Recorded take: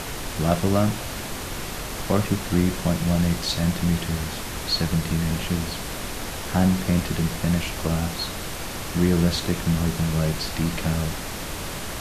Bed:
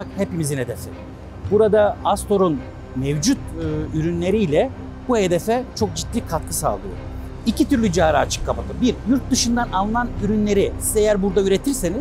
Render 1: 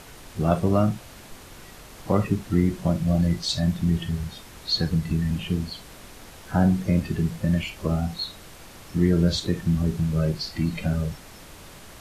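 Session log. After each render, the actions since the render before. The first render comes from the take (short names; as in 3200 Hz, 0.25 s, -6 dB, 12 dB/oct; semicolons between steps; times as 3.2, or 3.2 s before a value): noise print and reduce 13 dB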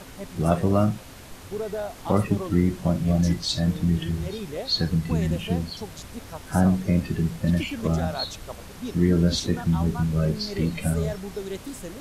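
add bed -16 dB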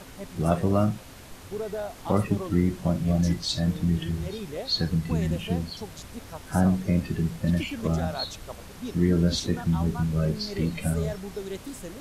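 gain -2 dB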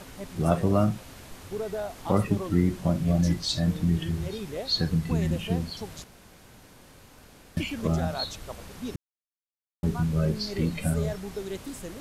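6.04–7.57 room tone; 8.96–9.83 mute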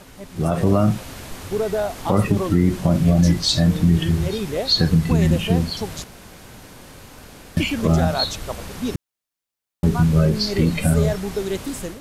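limiter -17 dBFS, peak gain reduction 7.5 dB; AGC gain up to 10 dB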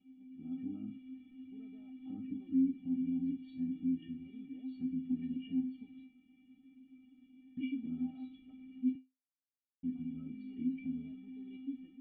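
vocal tract filter i; resonator 260 Hz, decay 0.22 s, harmonics odd, mix 100%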